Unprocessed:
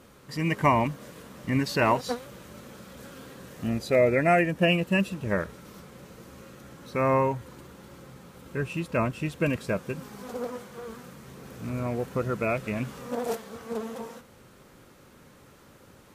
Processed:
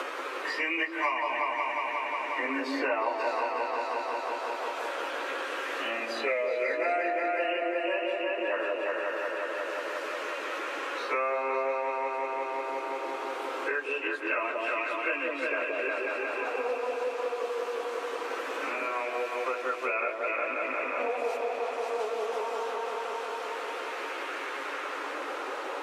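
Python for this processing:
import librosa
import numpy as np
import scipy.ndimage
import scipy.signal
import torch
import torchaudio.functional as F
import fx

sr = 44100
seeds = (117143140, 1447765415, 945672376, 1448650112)

y = scipy.signal.sosfilt(scipy.signal.butter(12, 280.0, 'highpass', fs=sr, output='sos'), x)
y = fx.peak_eq(y, sr, hz=2600.0, db=4.5, octaves=0.38)
y = fx.stretch_vocoder_free(y, sr, factor=1.6)
y = fx.filter_lfo_bandpass(y, sr, shape='sine', hz=0.22, low_hz=780.0, high_hz=2000.0, q=0.83)
y = fx.echo_opening(y, sr, ms=179, hz=750, octaves=2, feedback_pct=70, wet_db=0)
y = fx.band_squash(y, sr, depth_pct=100)
y = y * librosa.db_to_amplitude(2.5)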